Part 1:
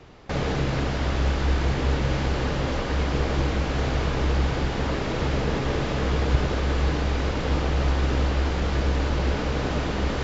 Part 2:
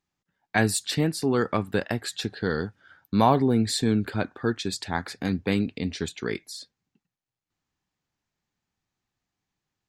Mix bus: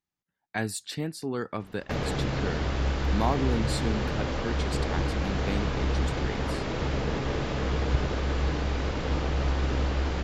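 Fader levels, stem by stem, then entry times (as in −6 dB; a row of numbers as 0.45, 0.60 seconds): −4.0, −8.0 decibels; 1.60, 0.00 seconds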